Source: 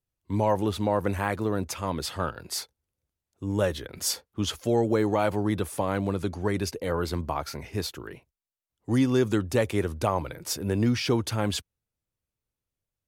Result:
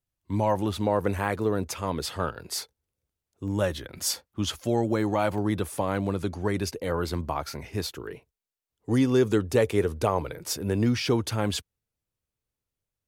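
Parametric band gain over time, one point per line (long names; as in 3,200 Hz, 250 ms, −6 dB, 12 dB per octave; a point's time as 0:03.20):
parametric band 440 Hz 0.23 octaves
−6.5 dB
from 0:00.81 +4.5 dB
from 0:03.48 −7 dB
from 0:05.38 −0.5 dB
from 0:07.96 +8.5 dB
from 0:10.39 +2 dB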